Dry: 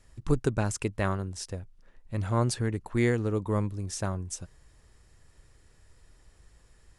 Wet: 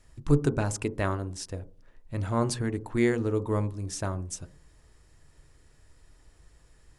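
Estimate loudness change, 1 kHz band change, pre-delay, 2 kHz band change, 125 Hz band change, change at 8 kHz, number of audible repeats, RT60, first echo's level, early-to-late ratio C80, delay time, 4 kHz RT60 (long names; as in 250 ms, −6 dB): +1.0 dB, +0.5 dB, 3 ms, 0.0 dB, 0.0 dB, 0.0 dB, no echo audible, 0.40 s, no echo audible, 24.0 dB, no echo audible, 0.40 s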